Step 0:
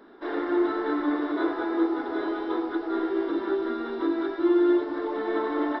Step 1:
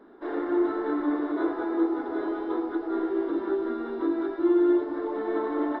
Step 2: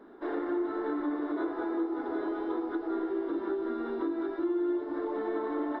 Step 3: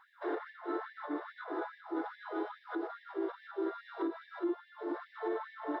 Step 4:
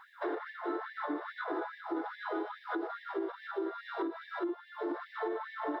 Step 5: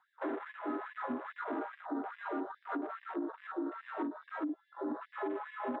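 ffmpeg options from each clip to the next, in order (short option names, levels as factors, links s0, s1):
-af "highshelf=f=2000:g=-12"
-af "acompressor=threshold=0.0316:ratio=3"
-af "alimiter=level_in=1.5:limit=0.0631:level=0:latency=1:release=62,volume=0.668,afftfilt=real='re*gte(b*sr/1024,260*pow(1700/260,0.5+0.5*sin(2*PI*2.4*pts/sr)))':imag='im*gte(b*sr/1024,260*pow(1700/260,0.5+0.5*sin(2*PI*2.4*pts/sr)))':win_size=1024:overlap=0.75,volume=1.19"
-af "acompressor=threshold=0.01:ratio=6,volume=2.37"
-af "afreqshift=-47,afwtdn=0.00631,volume=0.841"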